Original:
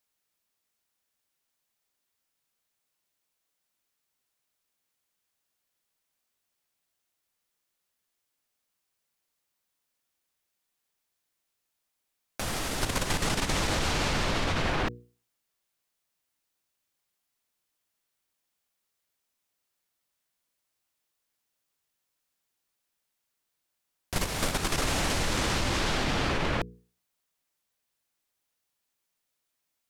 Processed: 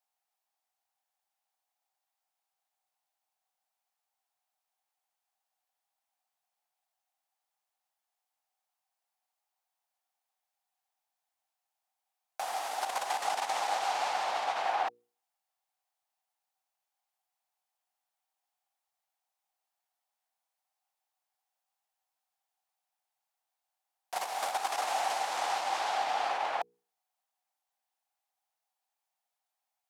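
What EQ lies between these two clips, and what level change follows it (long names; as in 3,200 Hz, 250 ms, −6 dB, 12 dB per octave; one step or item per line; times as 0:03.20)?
high-pass with resonance 770 Hz, resonance Q 7.7
−8.0 dB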